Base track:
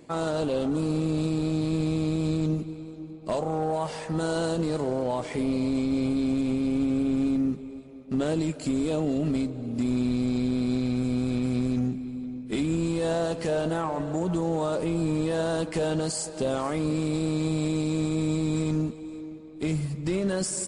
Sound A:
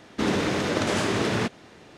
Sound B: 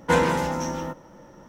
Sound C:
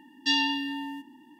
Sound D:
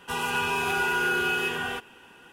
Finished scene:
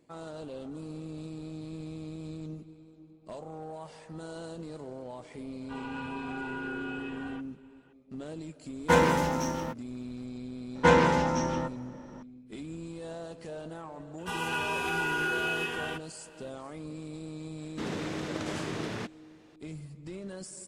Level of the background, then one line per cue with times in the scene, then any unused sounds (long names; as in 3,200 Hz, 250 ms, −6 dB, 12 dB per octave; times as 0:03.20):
base track −14.5 dB
0:05.61: mix in D −9.5 dB + head-to-tape spacing loss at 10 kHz 32 dB
0:08.80: mix in B −1.5 dB + dead-zone distortion −42.5 dBFS
0:10.75: mix in B −0.5 dB + low-pass filter 6,000 Hz
0:14.18: mix in D −5 dB + low-pass filter 11,000 Hz
0:17.59: mix in A −11.5 dB
not used: C